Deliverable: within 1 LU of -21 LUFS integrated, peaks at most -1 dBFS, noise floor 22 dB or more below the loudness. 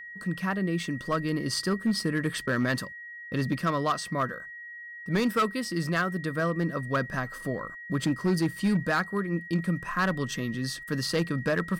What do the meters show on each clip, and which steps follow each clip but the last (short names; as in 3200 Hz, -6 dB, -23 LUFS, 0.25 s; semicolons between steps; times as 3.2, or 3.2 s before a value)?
clipped 1.4%; flat tops at -19.5 dBFS; steady tone 1900 Hz; tone level -40 dBFS; loudness -29.0 LUFS; peak -19.5 dBFS; loudness target -21.0 LUFS
-> clip repair -19.5 dBFS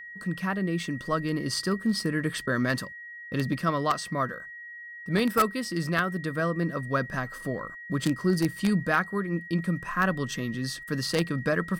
clipped 0.0%; steady tone 1900 Hz; tone level -40 dBFS
-> notch 1900 Hz, Q 30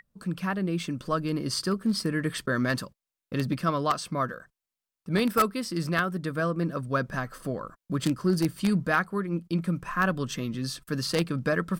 steady tone none; loudness -28.5 LUFS; peak -10.0 dBFS; loudness target -21.0 LUFS
-> gain +7.5 dB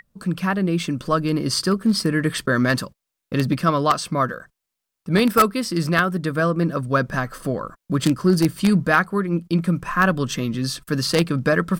loudness -21.0 LUFS; peak -2.5 dBFS; noise floor -82 dBFS